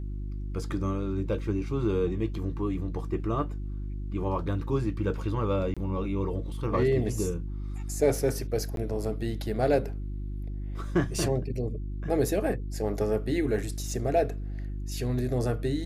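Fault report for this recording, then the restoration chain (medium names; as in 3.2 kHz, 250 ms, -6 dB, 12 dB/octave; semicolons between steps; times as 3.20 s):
hum 50 Hz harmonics 7 -34 dBFS
5.74–5.77 s: dropout 26 ms
8.76–8.77 s: dropout 12 ms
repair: de-hum 50 Hz, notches 7; interpolate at 5.74 s, 26 ms; interpolate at 8.76 s, 12 ms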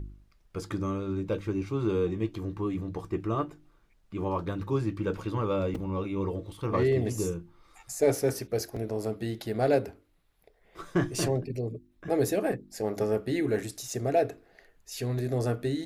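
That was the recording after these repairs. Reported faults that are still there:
nothing left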